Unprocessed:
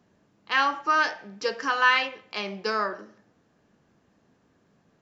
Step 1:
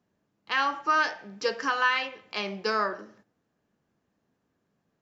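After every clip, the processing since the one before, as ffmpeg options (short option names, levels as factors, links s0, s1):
-af "agate=range=0.282:threshold=0.00141:ratio=16:detection=peak,alimiter=limit=0.211:level=0:latency=1:release=433"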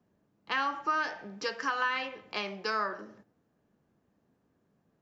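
-filter_complex "[0:a]tiltshelf=f=1300:g=4,acrossover=split=400|900[s0][s1][s2];[s0]acompressor=threshold=0.00562:ratio=4[s3];[s1]acompressor=threshold=0.00708:ratio=4[s4];[s2]acompressor=threshold=0.0398:ratio=4[s5];[s3][s4][s5]amix=inputs=3:normalize=0"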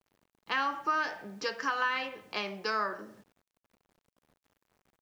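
-af "acrusher=bits=10:mix=0:aa=0.000001"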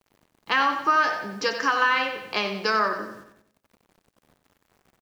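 -af "aecho=1:1:92|184|276|368|460:0.335|0.154|0.0709|0.0326|0.015,volume=2.66"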